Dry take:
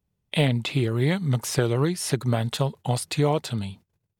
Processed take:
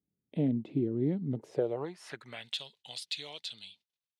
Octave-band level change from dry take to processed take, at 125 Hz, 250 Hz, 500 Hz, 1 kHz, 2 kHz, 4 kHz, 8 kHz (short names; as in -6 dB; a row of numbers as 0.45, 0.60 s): -15.0, -6.5, -9.5, -17.5, -14.5, -7.5, -19.5 dB